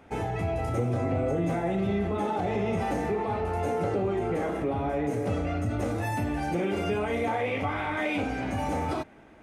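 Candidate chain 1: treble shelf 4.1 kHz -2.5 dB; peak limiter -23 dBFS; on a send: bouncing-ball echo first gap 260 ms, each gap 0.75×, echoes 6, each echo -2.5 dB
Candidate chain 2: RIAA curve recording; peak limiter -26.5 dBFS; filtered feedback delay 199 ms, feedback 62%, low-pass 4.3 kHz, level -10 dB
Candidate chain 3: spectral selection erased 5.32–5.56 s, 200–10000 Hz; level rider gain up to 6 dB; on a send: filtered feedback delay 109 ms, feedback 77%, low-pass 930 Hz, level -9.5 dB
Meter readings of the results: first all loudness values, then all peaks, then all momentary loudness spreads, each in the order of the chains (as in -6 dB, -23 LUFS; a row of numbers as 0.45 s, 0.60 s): -28.0 LUFS, -34.5 LUFS, -22.5 LUFS; -15.5 dBFS, -23.5 dBFS, -9.0 dBFS; 1 LU, 2 LU, 4 LU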